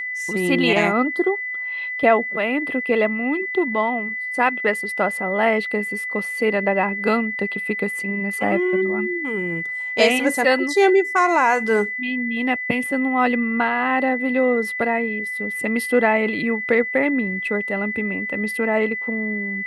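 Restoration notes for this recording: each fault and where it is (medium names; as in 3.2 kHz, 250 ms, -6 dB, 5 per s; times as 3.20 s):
whine 2 kHz -25 dBFS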